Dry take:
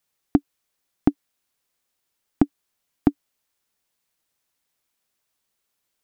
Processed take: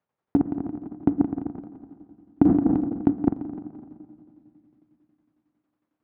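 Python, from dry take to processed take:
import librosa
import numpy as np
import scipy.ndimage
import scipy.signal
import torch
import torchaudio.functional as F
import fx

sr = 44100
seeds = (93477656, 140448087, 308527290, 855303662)

p1 = fx.reverse_delay_fb(x, sr, ms=127, feedback_pct=50, wet_db=-8)
p2 = scipy.signal.sosfilt(scipy.signal.butter(2, 1100.0, 'lowpass', fs=sr, output='sos'), p1)
p3 = fx.rev_fdn(p2, sr, rt60_s=2.7, lf_ratio=1.25, hf_ratio=0.55, size_ms=30.0, drr_db=16.0)
p4 = 10.0 ** (-15.5 / 20.0) * np.tanh(p3 / 10.0 ** (-15.5 / 20.0))
p5 = p3 + (p4 * librosa.db_to_amplitude(-6.5))
p6 = fx.echo_feedback(p5, sr, ms=171, feedback_pct=44, wet_db=-10)
p7 = fx.tremolo_shape(p6, sr, shape='saw_down', hz=11.0, depth_pct=70)
p8 = scipy.signal.sosfilt(scipy.signal.butter(2, 80.0, 'highpass', fs=sr, output='sos'), p7)
p9 = fx.sustainer(p8, sr, db_per_s=41.0, at=(2.43, 3.09), fade=0.02)
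y = p9 * librosa.db_to_amplitude(3.5)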